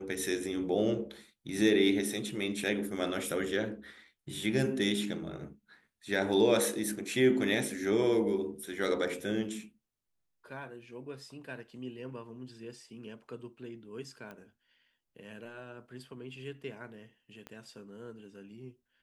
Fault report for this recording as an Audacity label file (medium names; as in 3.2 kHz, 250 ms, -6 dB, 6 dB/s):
14.310000	14.310000	pop -32 dBFS
17.470000	17.470000	pop -29 dBFS